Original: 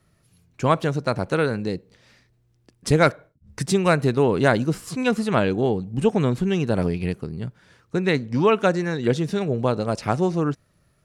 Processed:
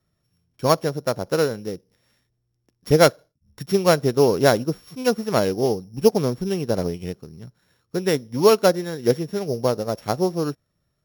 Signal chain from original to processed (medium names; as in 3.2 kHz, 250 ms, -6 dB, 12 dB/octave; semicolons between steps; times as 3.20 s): sorted samples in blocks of 8 samples; dynamic bell 520 Hz, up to +6 dB, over -32 dBFS, Q 1.1; upward expansion 1.5:1, over -29 dBFS